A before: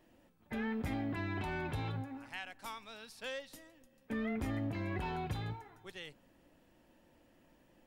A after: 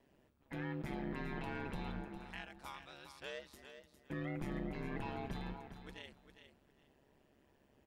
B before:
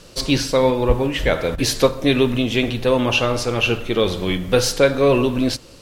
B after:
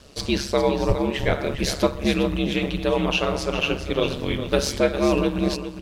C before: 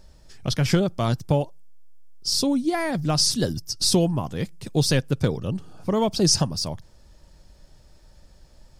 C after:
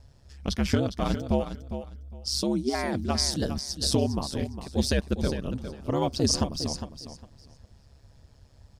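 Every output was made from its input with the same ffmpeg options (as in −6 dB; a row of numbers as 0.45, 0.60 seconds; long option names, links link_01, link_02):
-filter_complex "[0:a]highshelf=frequency=7800:gain=-5,aeval=exprs='val(0)*sin(2*PI*69*n/s)':channel_layout=same,asplit=2[link_01][link_02];[link_02]aecho=0:1:406|812|1218:0.316|0.0601|0.0114[link_03];[link_01][link_03]amix=inputs=2:normalize=0,volume=-1.5dB"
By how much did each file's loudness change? −4.5, −4.5, −5.0 LU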